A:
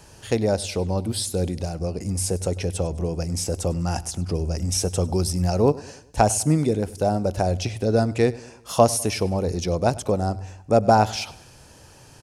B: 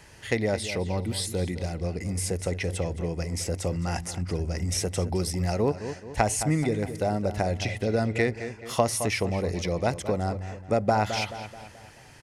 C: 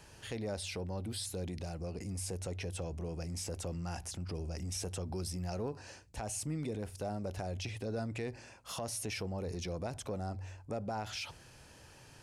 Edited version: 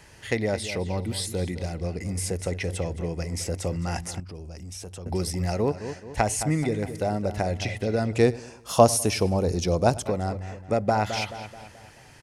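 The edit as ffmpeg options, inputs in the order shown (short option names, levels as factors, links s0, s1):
-filter_complex "[1:a]asplit=3[s0][s1][s2];[s0]atrim=end=4.202[s3];[2:a]atrim=start=4.198:end=5.062[s4];[s1]atrim=start=5.058:end=8.132[s5];[0:a]atrim=start=8.128:end=10.062[s6];[s2]atrim=start=10.058[s7];[s3][s4]acrossfade=d=0.004:c1=hsin:c2=hsin[s8];[s8][s5]acrossfade=d=0.004:c1=hsin:c2=hsin[s9];[s9][s6]acrossfade=d=0.004:c1=hsin:c2=hsin[s10];[s10][s7]acrossfade=d=0.004:c1=hsin:c2=hsin"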